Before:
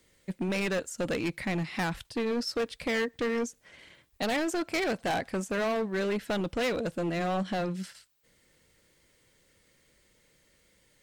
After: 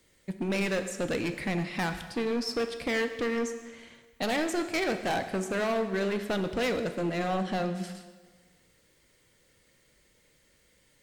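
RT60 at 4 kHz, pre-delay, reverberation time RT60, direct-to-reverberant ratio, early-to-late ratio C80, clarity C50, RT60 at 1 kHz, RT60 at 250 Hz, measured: 1.3 s, 7 ms, 1.4 s, 8.0 dB, 11.0 dB, 9.5 dB, 1.5 s, 1.5 s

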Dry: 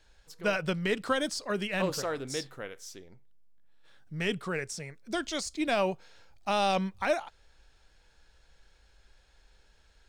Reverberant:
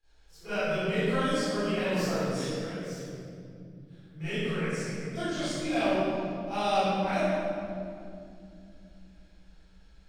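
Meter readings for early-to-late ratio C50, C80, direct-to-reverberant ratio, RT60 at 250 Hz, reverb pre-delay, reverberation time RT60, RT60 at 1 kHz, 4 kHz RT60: -9.5 dB, -4.5 dB, -20.5 dB, 4.9 s, 29 ms, 2.5 s, 2.1 s, 1.6 s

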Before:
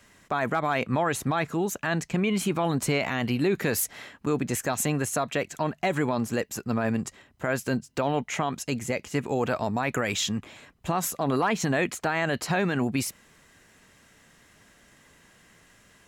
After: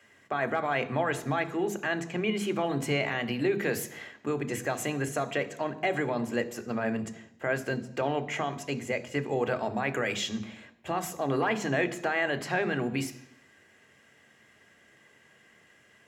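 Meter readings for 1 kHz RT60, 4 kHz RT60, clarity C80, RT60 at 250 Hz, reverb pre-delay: 0.85 s, 0.85 s, 17.5 dB, 0.80 s, 3 ms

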